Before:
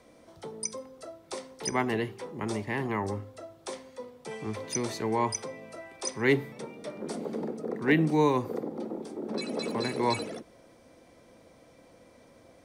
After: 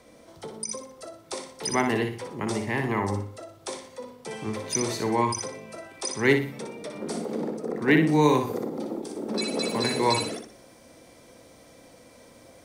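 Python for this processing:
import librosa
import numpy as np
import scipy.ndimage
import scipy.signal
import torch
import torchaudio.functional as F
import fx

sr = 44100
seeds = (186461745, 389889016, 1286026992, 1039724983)

y = fx.high_shelf(x, sr, hz=3900.0, db=fx.steps((0.0, 3.5), (8.22, 9.0)))
y = fx.echo_feedback(y, sr, ms=60, feedback_pct=32, wet_db=-6.0)
y = fx.end_taper(y, sr, db_per_s=110.0)
y = y * 10.0 ** (3.0 / 20.0)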